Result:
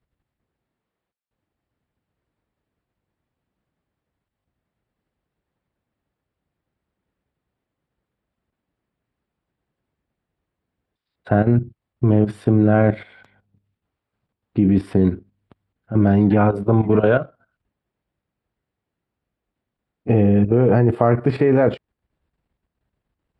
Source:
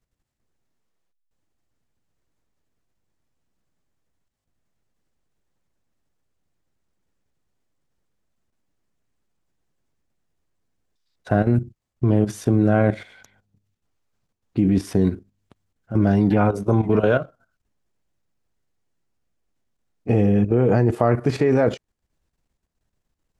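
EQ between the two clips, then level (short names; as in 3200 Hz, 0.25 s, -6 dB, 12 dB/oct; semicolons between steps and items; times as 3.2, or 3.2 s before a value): running mean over 7 samples; HPF 42 Hz; +2.5 dB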